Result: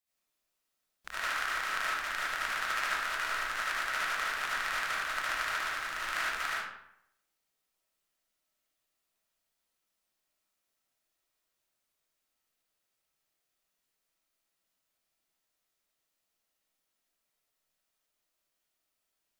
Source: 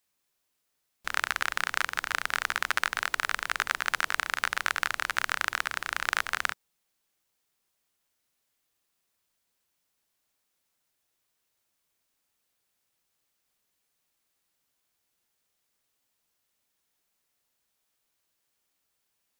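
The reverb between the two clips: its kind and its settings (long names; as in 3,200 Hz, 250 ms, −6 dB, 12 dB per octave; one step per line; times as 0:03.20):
comb and all-pass reverb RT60 0.76 s, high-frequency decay 0.7×, pre-delay 35 ms, DRR −9 dB
level −12.5 dB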